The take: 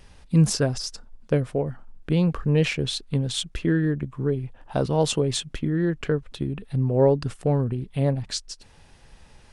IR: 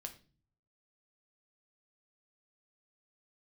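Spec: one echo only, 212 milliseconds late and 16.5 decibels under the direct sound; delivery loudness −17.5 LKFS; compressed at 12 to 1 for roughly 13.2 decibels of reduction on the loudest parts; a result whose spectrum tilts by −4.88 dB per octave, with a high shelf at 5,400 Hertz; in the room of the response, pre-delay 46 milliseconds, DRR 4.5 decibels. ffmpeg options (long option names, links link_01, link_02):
-filter_complex "[0:a]highshelf=frequency=5400:gain=7.5,acompressor=threshold=-26dB:ratio=12,aecho=1:1:212:0.15,asplit=2[link_01][link_02];[1:a]atrim=start_sample=2205,adelay=46[link_03];[link_02][link_03]afir=irnorm=-1:irlink=0,volume=-0.5dB[link_04];[link_01][link_04]amix=inputs=2:normalize=0,volume=12.5dB"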